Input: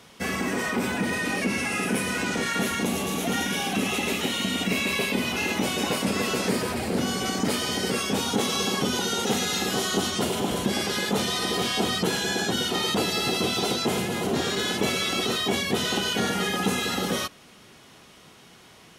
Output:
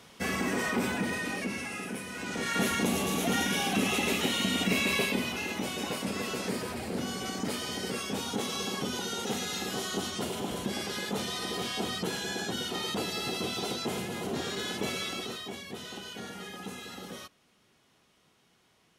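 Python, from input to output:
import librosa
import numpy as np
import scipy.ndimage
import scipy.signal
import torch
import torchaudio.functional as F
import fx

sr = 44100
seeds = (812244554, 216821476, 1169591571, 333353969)

y = fx.gain(x, sr, db=fx.line((0.81, -3.0), (2.09, -13.0), (2.61, -2.0), (5.0, -2.0), (5.43, -8.0), (15.03, -8.0), (15.57, -16.0)))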